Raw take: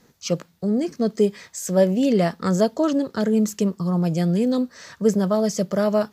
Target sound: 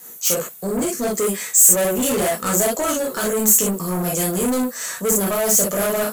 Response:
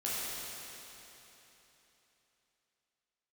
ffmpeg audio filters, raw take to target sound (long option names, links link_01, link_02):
-filter_complex "[1:a]atrim=start_sample=2205,atrim=end_sample=3087[link_01];[0:a][link_01]afir=irnorm=-1:irlink=0,asplit=2[link_02][link_03];[link_03]highpass=frequency=720:poles=1,volume=25dB,asoftclip=type=tanh:threshold=-5.5dB[link_04];[link_02][link_04]amix=inputs=2:normalize=0,lowpass=frequency=7700:poles=1,volume=-6dB,aexciter=amount=7.5:drive=9.3:freq=7400,volume=-8dB"